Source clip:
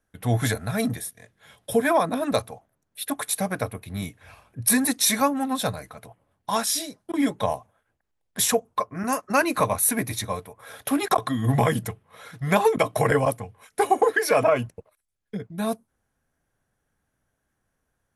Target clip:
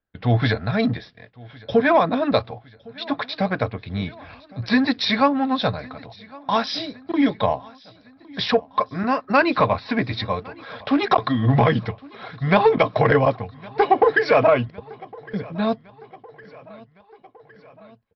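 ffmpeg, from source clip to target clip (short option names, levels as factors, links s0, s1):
-filter_complex "[0:a]acontrast=75,agate=range=0.2:threshold=0.00708:ratio=16:detection=peak,asplit=2[s0][s1];[s1]aecho=0:1:1110|2220|3330|4440:0.0668|0.0388|0.0225|0.013[s2];[s0][s2]amix=inputs=2:normalize=0,aresample=11025,aresample=44100,volume=0.794"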